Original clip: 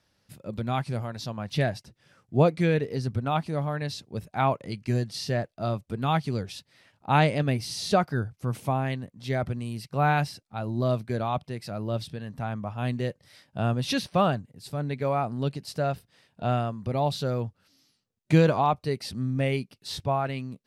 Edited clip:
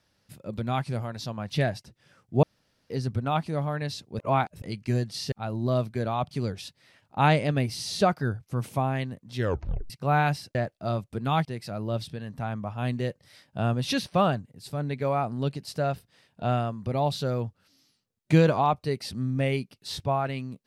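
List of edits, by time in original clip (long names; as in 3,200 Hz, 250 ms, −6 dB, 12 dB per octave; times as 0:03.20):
0:02.43–0:02.90: fill with room tone
0:04.19–0:04.62: reverse
0:05.32–0:06.22: swap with 0:10.46–0:11.45
0:09.27: tape stop 0.54 s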